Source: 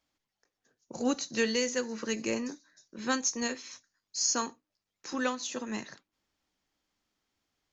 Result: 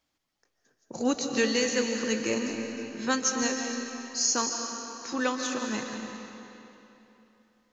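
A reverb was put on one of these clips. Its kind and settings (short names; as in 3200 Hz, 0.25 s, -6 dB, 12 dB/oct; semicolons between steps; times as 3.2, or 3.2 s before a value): digital reverb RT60 3.2 s, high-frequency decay 0.85×, pre-delay 0.105 s, DRR 3 dB; gain +2.5 dB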